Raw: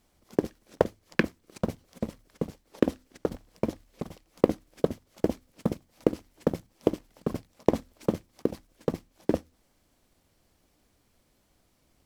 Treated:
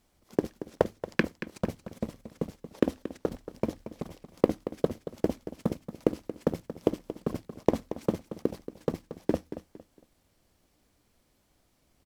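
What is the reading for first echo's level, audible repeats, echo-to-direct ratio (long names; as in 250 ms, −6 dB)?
−12.5 dB, 3, −12.0 dB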